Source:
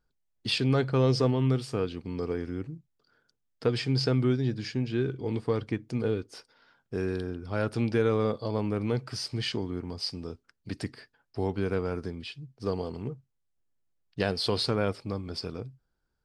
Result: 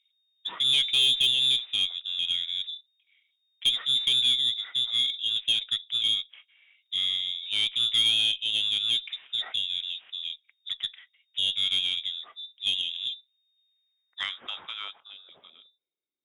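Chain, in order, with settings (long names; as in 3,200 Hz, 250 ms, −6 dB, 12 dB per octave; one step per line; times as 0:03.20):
voice inversion scrambler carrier 3,700 Hz
band-pass filter sweep 2,800 Hz → 330 Hz, 0:13.60–0:16.14
harmonic generator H 4 −26 dB, 5 −18 dB, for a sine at −13.5 dBFS
level +1.5 dB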